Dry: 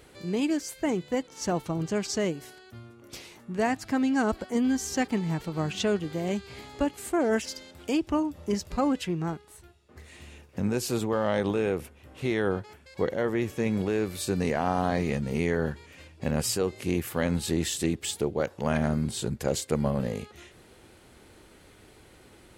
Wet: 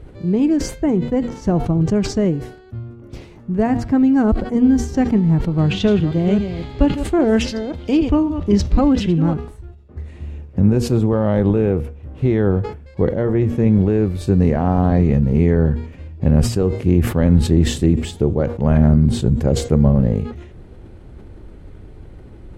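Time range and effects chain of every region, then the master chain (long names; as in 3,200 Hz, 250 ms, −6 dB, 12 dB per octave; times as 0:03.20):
0:05.58–0:09.34: delay that plays each chunk backwards 268 ms, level −9.5 dB + parametric band 3,500 Hz +10 dB 1.5 octaves
whole clip: spectral tilt −4.5 dB per octave; hum removal 237.2 Hz, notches 35; level that may fall only so fast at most 100 dB per second; level +3 dB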